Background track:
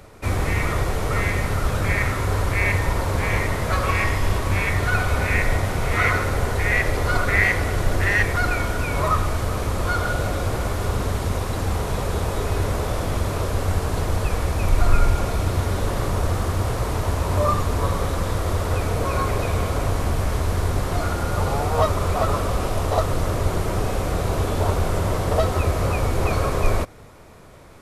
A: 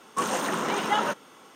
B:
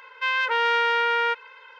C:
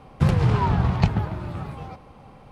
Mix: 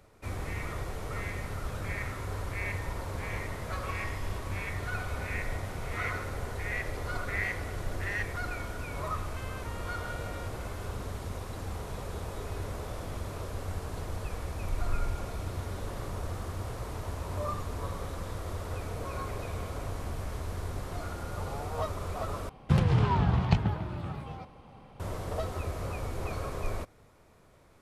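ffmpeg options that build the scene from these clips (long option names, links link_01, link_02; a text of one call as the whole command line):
ffmpeg -i bed.wav -i cue0.wav -i cue1.wav -i cue2.wav -filter_complex "[0:a]volume=-14dB[link_01];[2:a]acompressor=threshold=-35dB:ratio=6:attack=3.2:release=140:knee=1:detection=peak[link_02];[3:a]equalizer=frequency=3200:width_type=o:width=0.43:gain=3[link_03];[link_01]asplit=2[link_04][link_05];[link_04]atrim=end=22.494[link_06];[link_03]atrim=end=2.51,asetpts=PTS-STARTPTS,volume=-5dB[link_07];[link_05]atrim=start=24.996[link_08];[link_02]atrim=end=1.79,asetpts=PTS-STARTPTS,volume=-9.5dB,afade=type=in:duration=0.004:curve=hsin,afade=type=out:start_time=1.786:duration=0.004:curve=hsin,adelay=9150[link_09];[link_06][link_07]acrossfade=duration=0.004:curve1=hsin:curve2=hsin[link_10];[link_10][link_08]acrossfade=duration=0.004:curve1=hsin:curve2=hsin[link_11];[link_11][link_09]amix=inputs=2:normalize=0" out.wav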